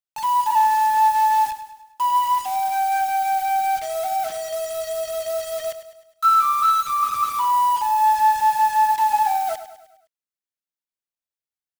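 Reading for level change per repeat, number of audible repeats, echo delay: -6.0 dB, 4, 0.103 s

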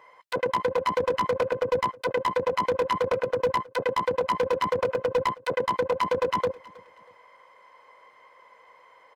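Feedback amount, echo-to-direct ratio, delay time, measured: 33%, -21.5 dB, 0.319 s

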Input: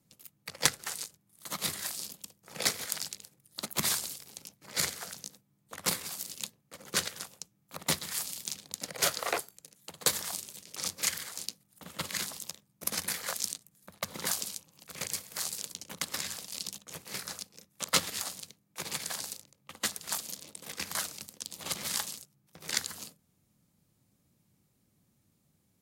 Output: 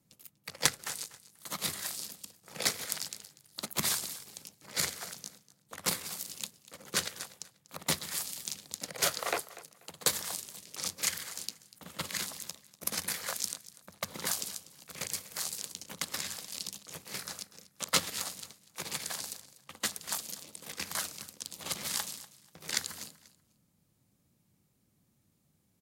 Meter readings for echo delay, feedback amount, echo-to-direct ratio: 0.243 s, 24%, -17.5 dB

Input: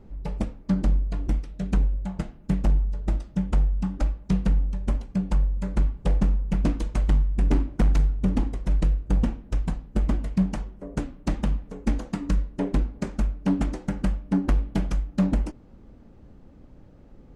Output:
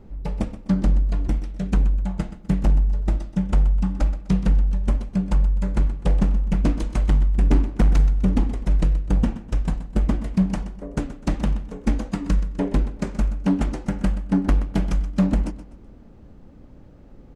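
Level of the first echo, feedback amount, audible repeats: -14.0 dB, 36%, 3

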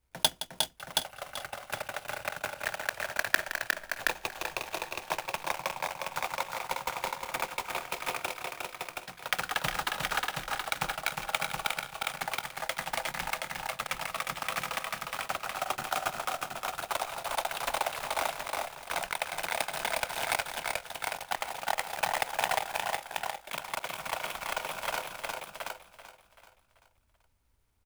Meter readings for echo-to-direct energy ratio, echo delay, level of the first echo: -0.5 dB, 0.167 s, -13.0 dB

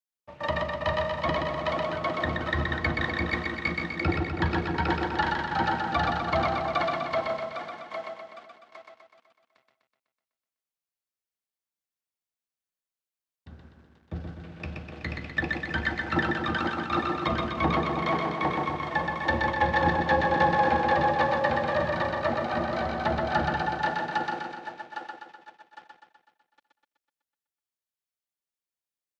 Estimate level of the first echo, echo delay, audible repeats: -3.5 dB, 0.125 s, 7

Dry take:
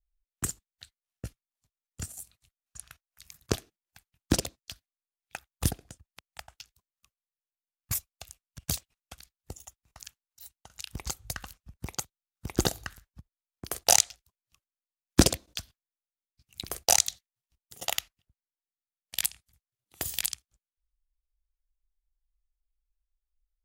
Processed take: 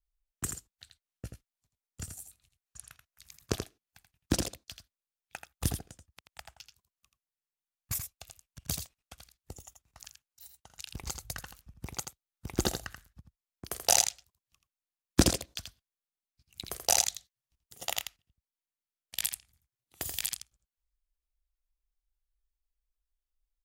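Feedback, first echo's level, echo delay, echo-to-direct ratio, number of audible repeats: no steady repeat, -7.0 dB, 83 ms, -7.0 dB, 1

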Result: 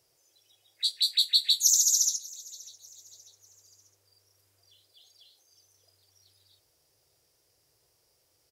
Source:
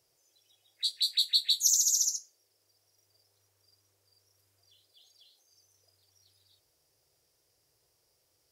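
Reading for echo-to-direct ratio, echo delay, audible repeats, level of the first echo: -21.0 dB, 0.594 s, 2, -22.0 dB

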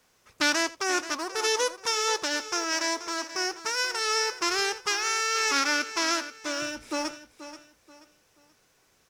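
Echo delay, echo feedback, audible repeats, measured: 82 ms, no steady repeat, 5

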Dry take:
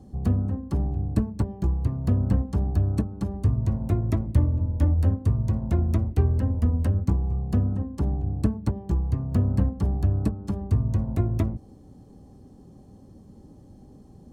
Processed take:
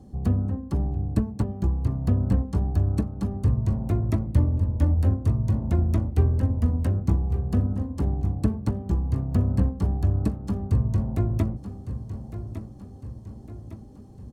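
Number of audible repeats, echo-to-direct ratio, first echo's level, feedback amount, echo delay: 4, -10.5 dB, -11.5 dB, 50%, 1.157 s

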